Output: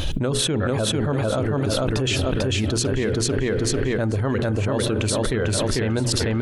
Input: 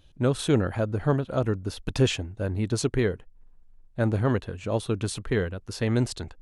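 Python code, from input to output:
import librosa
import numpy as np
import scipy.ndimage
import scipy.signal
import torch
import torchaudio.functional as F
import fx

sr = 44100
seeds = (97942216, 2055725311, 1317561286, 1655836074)

p1 = fx.dereverb_blind(x, sr, rt60_s=0.66)
p2 = fx.hum_notches(p1, sr, base_hz=60, count=7)
p3 = p2 + fx.echo_feedback(p2, sr, ms=445, feedback_pct=35, wet_db=-3.0, dry=0)
p4 = fx.rev_spring(p3, sr, rt60_s=3.7, pass_ms=(38,), chirp_ms=35, drr_db=18.0)
p5 = fx.env_flatten(p4, sr, amount_pct=100)
y = F.gain(torch.from_numpy(p5), -5.0).numpy()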